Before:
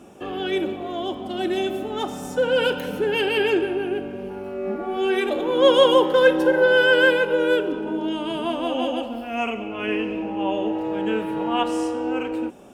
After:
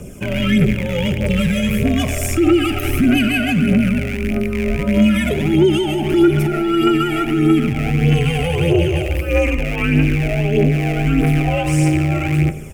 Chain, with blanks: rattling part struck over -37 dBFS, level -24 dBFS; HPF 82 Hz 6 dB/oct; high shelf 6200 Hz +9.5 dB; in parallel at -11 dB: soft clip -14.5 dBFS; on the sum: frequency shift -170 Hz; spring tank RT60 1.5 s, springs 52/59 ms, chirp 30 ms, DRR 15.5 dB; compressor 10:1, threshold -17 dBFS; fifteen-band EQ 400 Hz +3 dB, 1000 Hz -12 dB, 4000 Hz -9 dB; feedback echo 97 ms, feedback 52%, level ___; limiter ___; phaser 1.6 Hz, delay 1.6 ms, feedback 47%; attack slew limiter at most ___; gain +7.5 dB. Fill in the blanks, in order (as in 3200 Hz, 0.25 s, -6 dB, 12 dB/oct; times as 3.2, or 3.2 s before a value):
-23 dB, -17 dBFS, 530 dB/s